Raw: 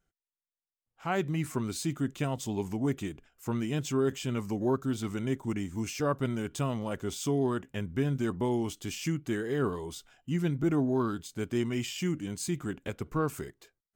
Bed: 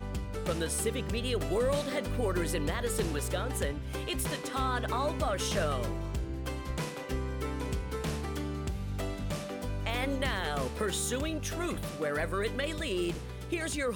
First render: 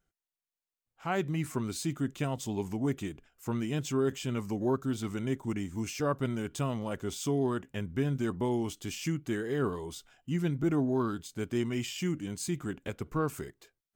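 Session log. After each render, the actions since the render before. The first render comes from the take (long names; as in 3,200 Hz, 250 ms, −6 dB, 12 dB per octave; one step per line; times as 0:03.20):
level −1 dB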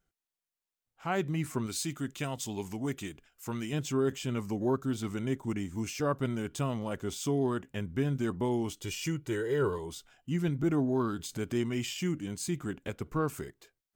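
0:01.66–0:03.73: tilt shelving filter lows −4 dB, about 1,300 Hz
0:08.81–0:09.78: comb filter 2.1 ms
0:10.48–0:11.94: upward compression, threshold −31 dBFS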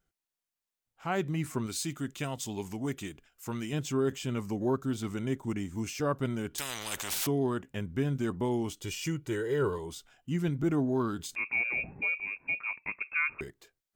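0:06.58–0:07.27: every bin compressed towards the loudest bin 10 to 1
0:11.35–0:13.41: voice inversion scrambler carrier 2,600 Hz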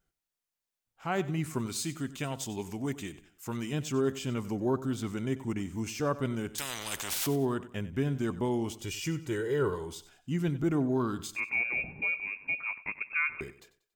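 repeating echo 94 ms, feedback 35%, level −16 dB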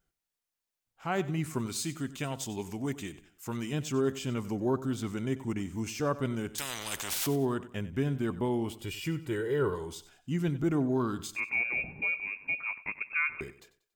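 0:08.16–0:09.75: parametric band 6,200 Hz −11 dB 0.52 octaves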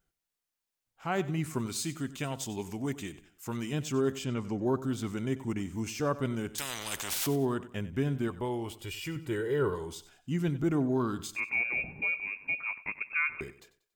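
0:04.24–0:04.66: high-frequency loss of the air 56 metres
0:08.28–0:09.16: parametric band 210 Hz −8.5 dB 1.2 octaves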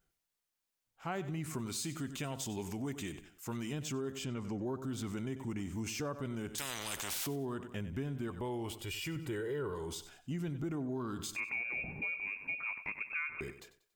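transient designer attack −3 dB, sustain +3 dB
downward compressor, threshold −35 dBFS, peak gain reduction 11 dB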